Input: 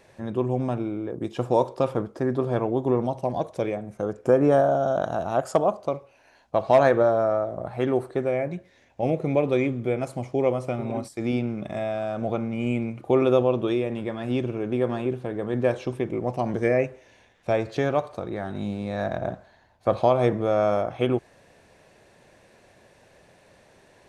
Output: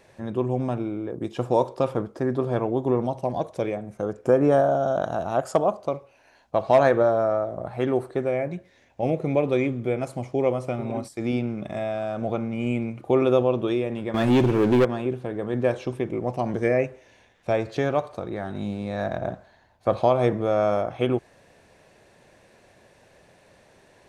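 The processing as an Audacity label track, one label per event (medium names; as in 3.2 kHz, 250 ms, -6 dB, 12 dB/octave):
14.140000	14.850000	waveshaping leveller passes 3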